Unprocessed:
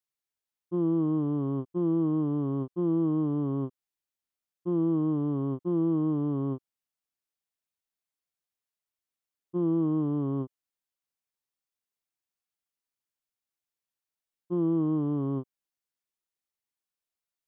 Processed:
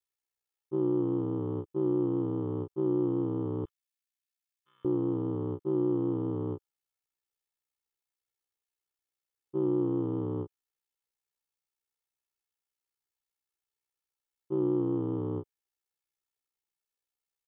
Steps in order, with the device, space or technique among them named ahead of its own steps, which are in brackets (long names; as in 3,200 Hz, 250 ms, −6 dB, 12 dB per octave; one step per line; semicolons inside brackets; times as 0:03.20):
0:03.65–0:04.85: inverse Chebyshev high-pass filter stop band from 810 Hz, stop band 40 dB
ring-modulated robot voice (ring modulation 31 Hz; comb filter 2.3 ms, depth 62%)